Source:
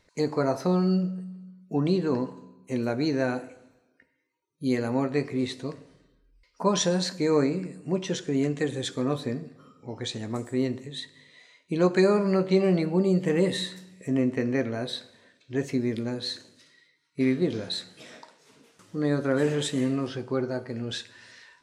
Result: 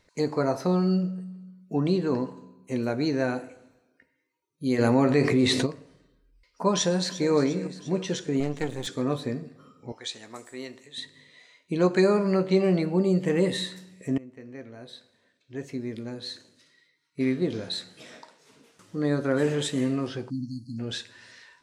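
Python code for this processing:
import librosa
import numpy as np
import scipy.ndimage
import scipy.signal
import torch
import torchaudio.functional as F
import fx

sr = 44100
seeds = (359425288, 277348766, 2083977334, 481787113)

y = fx.env_flatten(x, sr, amount_pct=70, at=(4.78, 5.65), fade=0.02)
y = fx.echo_throw(y, sr, start_s=6.74, length_s=0.58, ms=350, feedback_pct=60, wet_db=-13.5)
y = fx.halfwave_gain(y, sr, db=-12.0, at=(8.4, 8.87))
y = fx.highpass(y, sr, hz=1300.0, slope=6, at=(9.92, 10.98))
y = fx.brickwall_bandstop(y, sr, low_hz=320.0, high_hz=4100.0, at=(20.29, 20.78), fade=0.02)
y = fx.edit(y, sr, fx.fade_in_from(start_s=14.18, length_s=3.76, floor_db=-22.5), tone=tone)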